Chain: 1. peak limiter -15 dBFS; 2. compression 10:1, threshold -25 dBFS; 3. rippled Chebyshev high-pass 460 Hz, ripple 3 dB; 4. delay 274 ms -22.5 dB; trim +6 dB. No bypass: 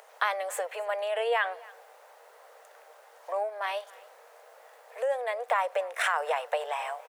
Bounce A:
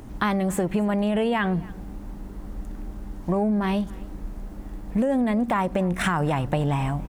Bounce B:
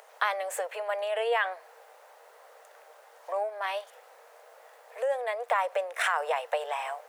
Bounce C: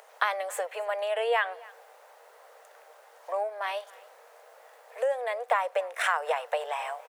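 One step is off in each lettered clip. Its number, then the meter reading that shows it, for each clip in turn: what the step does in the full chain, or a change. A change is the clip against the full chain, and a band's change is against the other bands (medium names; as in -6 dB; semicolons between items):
3, 2 kHz band -2.0 dB; 4, momentary loudness spread change -5 LU; 1, crest factor change +2.0 dB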